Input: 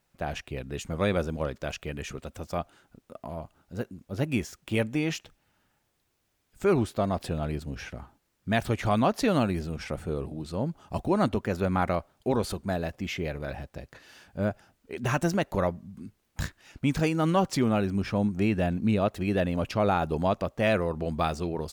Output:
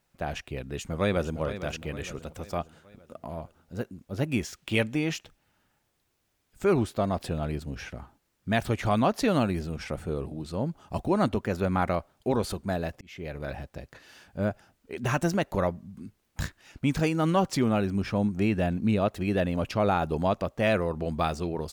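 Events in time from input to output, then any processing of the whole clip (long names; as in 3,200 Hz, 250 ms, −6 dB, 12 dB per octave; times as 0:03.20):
0:00.65–0:01.40: delay throw 460 ms, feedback 50%, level −11.5 dB
0:04.43–0:04.94: parametric band 3,200 Hz +6 dB 2 octaves
0:13.01–0:13.45: fade in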